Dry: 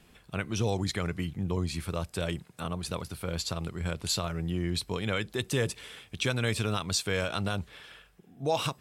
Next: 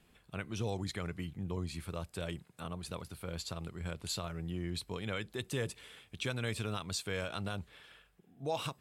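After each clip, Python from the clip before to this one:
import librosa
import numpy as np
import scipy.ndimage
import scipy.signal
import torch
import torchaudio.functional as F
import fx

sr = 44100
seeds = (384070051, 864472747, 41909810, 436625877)

y = fx.peak_eq(x, sr, hz=5600.0, db=-3.5, octaves=0.38)
y = F.gain(torch.from_numpy(y), -7.5).numpy()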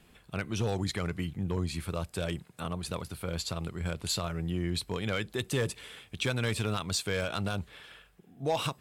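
y = np.clip(x, -10.0 ** (-28.0 / 20.0), 10.0 ** (-28.0 / 20.0))
y = F.gain(torch.from_numpy(y), 6.5).numpy()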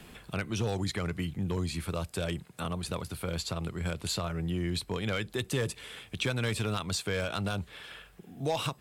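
y = fx.band_squash(x, sr, depth_pct=40)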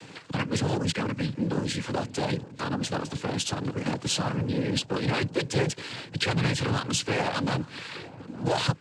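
y = fx.leveller(x, sr, passes=2)
y = fx.echo_filtered(y, sr, ms=867, feedback_pct=58, hz=1000.0, wet_db=-17.0)
y = fx.noise_vocoder(y, sr, seeds[0], bands=8)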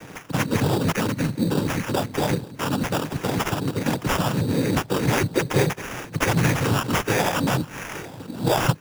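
y = fx.sample_hold(x, sr, seeds[1], rate_hz=4200.0, jitter_pct=0)
y = F.gain(torch.from_numpy(y), 5.5).numpy()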